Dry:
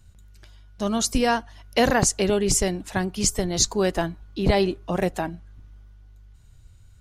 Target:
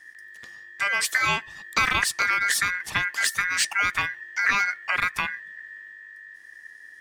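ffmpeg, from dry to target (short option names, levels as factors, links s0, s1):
-filter_complex "[0:a]aeval=exprs='val(0)*sin(2*PI*1800*n/s)':c=same,acrossover=split=820|5800[s0][s1][s2];[s2]asoftclip=type=hard:threshold=0.0531[s3];[s0][s1][s3]amix=inputs=3:normalize=0,acompressor=threshold=0.0316:ratio=2,volume=2.11"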